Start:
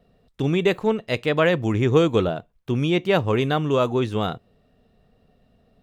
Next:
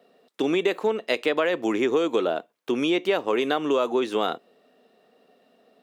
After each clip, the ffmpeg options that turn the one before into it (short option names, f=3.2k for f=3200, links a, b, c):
-filter_complex "[0:a]asplit=2[a][b];[b]alimiter=limit=-14.5dB:level=0:latency=1,volume=-2dB[c];[a][c]amix=inputs=2:normalize=0,highpass=f=280:w=0.5412,highpass=f=280:w=1.3066,acompressor=threshold=-19dB:ratio=6"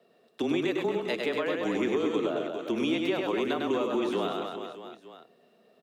-filter_complex "[0:a]aecho=1:1:100|230|399|618.7|904.3:0.631|0.398|0.251|0.158|0.1,acrossover=split=320[a][b];[b]acompressor=threshold=-24dB:ratio=3[c];[a][c]amix=inputs=2:normalize=0,afreqshift=-22,volume=-4.5dB"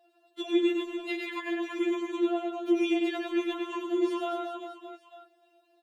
-af "afftfilt=real='re*4*eq(mod(b,16),0)':imag='im*4*eq(mod(b,16),0)':win_size=2048:overlap=0.75"